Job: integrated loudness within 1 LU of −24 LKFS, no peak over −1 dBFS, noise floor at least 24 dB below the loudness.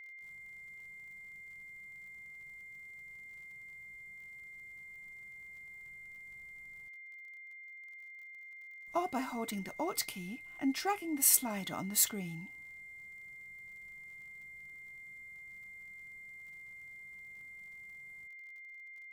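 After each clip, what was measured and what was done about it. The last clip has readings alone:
crackle rate 46 per second; interfering tone 2,100 Hz; level of the tone −48 dBFS; integrated loudness −39.5 LKFS; sample peak −13.0 dBFS; target loudness −24.0 LKFS
→ click removal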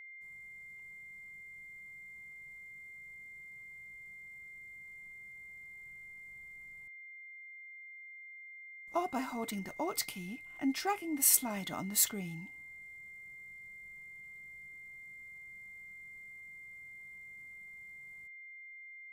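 crackle rate 0.21 per second; interfering tone 2,100 Hz; level of the tone −48 dBFS
→ notch filter 2,100 Hz, Q 30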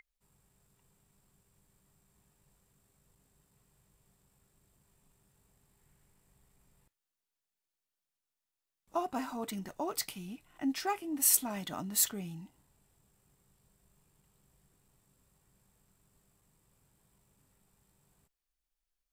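interfering tone none found; integrated loudness −32.5 LKFS; sample peak −13.0 dBFS; target loudness −24.0 LKFS
→ level +8.5 dB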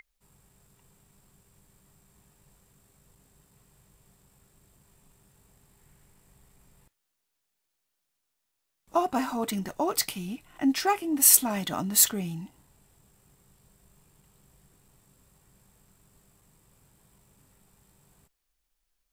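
integrated loudness −24.5 LKFS; sample peak −4.5 dBFS; background noise floor −81 dBFS

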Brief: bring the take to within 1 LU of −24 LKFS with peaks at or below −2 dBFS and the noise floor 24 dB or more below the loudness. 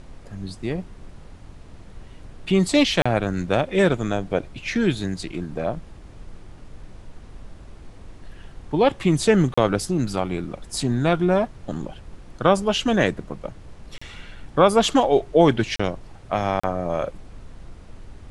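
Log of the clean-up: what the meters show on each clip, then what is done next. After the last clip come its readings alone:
number of dropouts 5; longest dropout 35 ms; background noise floor −44 dBFS; target noise floor −46 dBFS; integrated loudness −22.0 LKFS; sample peak −3.0 dBFS; target loudness −24.0 LKFS
→ repair the gap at 0:03.02/0:09.54/0:13.98/0:15.76/0:16.60, 35 ms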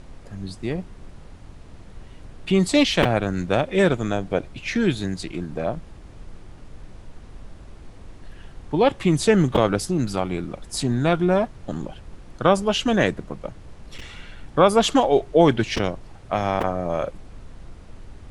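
number of dropouts 0; background noise floor −44 dBFS; target noise floor −46 dBFS
→ noise reduction from a noise print 6 dB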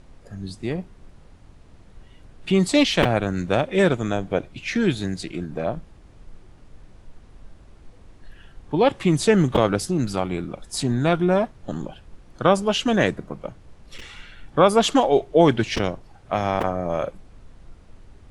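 background noise floor −49 dBFS; integrated loudness −22.0 LKFS; sample peak −3.0 dBFS; target loudness −24.0 LKFS
→ level −2 dB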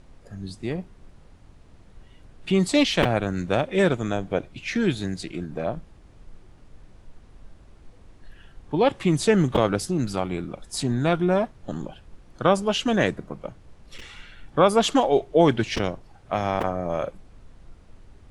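integrated loudness −24.0 LKFS; sample peak −5.0 dBFS; background noise floor −51 dBFS

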